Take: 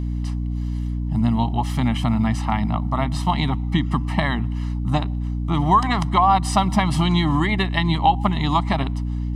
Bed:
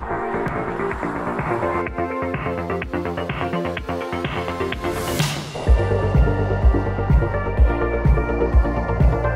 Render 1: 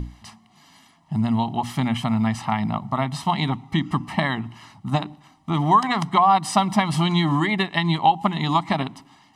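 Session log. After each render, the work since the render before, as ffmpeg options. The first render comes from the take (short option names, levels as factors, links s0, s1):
-af "bandreject=f=60:t=h:w=6,bandreject=f=120:t=h:w=6,bandreject=f=180:t=h:w=6,bandreject=f=240:t=h:w=6,bandreject=f=300:t=h:w=6"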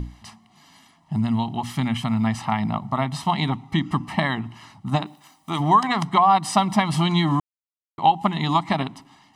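-filter_complex "[0:a]asettb=1/sr,asplit=3[s0][s1][s2];[s0]atrim=end=1.184[s3];[s1]atrim=start=1.18:end=2.24,asetpts=PTS-STARTPTS,afade=t=in:d=0.004:c=qsin,afade=t=out:st=1.056:d=0.004:c=qsin,equalizer=f=620:t=o:w=1.6:g=-4.5[s4];[s2]atrim=start=2.236[s5];[s3][s4]acrossfade=d=0.004:c1=hsin:c2=qsin[s6];[s6][s5]acrossfade=d=0.004:c1=qsin:c2=hsin,asplit=3[s7][s8][s9];[s7]afade=t=out:st=5.05:d=0.02[s10];[s8]aemphasis=mode=production:type=bsi,afade=t=in:st=5.05:d=0.02,afade=t=out:st=5.59:d=0.02[s11];[s9]afade=t=in:st=5.59:d=0.02[s12];[s10][s11][s12]amix=inputs=3:normalize=0,asplit=3[s13][s14][s15];[s13]atrim=end=7.4,asetpts=PTS-STARTPTS,afade=t=out:st=7.396:d=0.004:c=hsin[s16];[s14]atrim=start=7.4:end=7.98,asetpts=PTS-STARTPTS,volume=0[s17];[s15]atrim=start=7.98,asetpts=PTS-STARTPTS,afade=t=in:d=0.004:c=hsin[s18];[s16][s17][s18]concat=n=3:v=0:a=1"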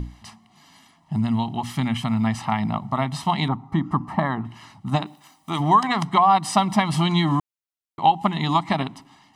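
-filter_complex "[0:a]asettb=1/sr,asplit=3[s0][s1][s2];[s0]atrim=end=3.484[s3];[s1]atrim=start=3.48:end=4.45,asetpts=PTS-STARTPTS,afade=t=in:d=0.004:c=qsin,afade=t=out:st=0.966:d=0.004:c=qsin,highshelf=f=1800:t=q:w=1.5:g=-10.5[s4];[s2]atrim=start=4.446[s5];[s3][s4]acrossfade=d=0.004:c1=hsin:c2=qsin[s6];[s6][s5]acrossfade=d=0.004:c1=qsin:c2=hsin"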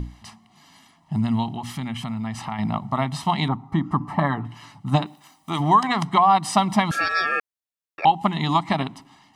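-filter_complex "[0:a]asettb=1/sr,asplit=3[s0][s1][s2];[s0]atrim=end=1.514[s3];[s1]atrim=start=1.51:end=2.59,asetpts=PTS-STARTPTS,afade=t=in:d=0.004:c=qsin,afade=t=out:st=1.076:d=0.004:c=qsin,acompressor=threshold=0.0398:ratio=2.5:attack=3.2:release=140:knee=1:detection=peak[s4];[s2]atrim=start=2.586[s5];[s3][s4]acrossfade=d=0.004:c1=hsin:c2=qsin[s6];[s6][s5]acrossfade=d=0.004:c1=qsin:c2=hsin,asettb=1/sr,asplit=3[s7][s8][s9];[s7]atrim=end=4.004[s10];[s8]atrim=start=4:end=5.05,asetpts=PTS-STARTPTS,afade=t=in:d=0.004:c=qsin,afade=t=out:st=1.046:d=0.004:c=qsin,aecho=1:1:6.9:0.45,atrim=end_sample=46305[s11];[s9]atrim=start=5.046[s12];[s10][s11]acrossfade=d=0.004:c1=hsin:c2=qsin[s13];[s13][s12]acrossfade=d=0.004:c1=qsin:c2=hsin,asettb=1/sr,asplit=3[s14][s15][s16];[s14]atrim=end=6.914[s17];[s15]atrim=start=6.91:end=8.05,asetpts=PTS-STARTPTS,afade=t=in:d=0.004:c=qsin,afade=t=out:st=1.136:d=0.004:c=qsin,aeval=exprs='val(0)*sin(2*PI*1500*n/s)':c=same[s18];[s16]atrim=start=8.046[s19];[s17][s18]acrossfade=d=0.004:c1=hsin:c2=qsin[s20];[s20][s19]acrossfade=d=0.004:c1=qsin:c2=hsin"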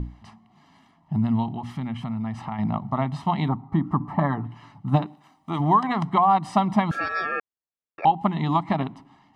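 -af "lowpass=f=1100:p=1"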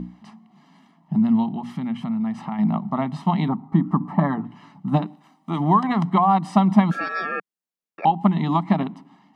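-af "lowshelf=f=130:t=q:w=3:g=-12"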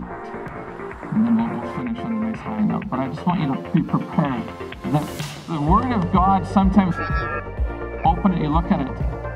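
-filter_complex "[1:a]volume=0.376[s0];[0:a][s0]amix=inputs=2:normalize=0"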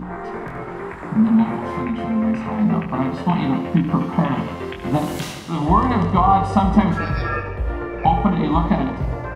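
-filter_complex "[0:a]asplit=2[s0][s1];[s1]adelay=23,volume=0.562[s2];[s0][s2]amix=inputs=2:normalize=0,aecho=1:1:72|144|216|288|360|432|504:0.335|0.191|0.109|0.062|0.0354|0.0202|0.0115"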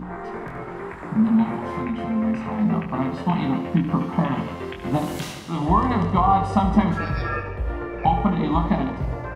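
-af "volume=0.708"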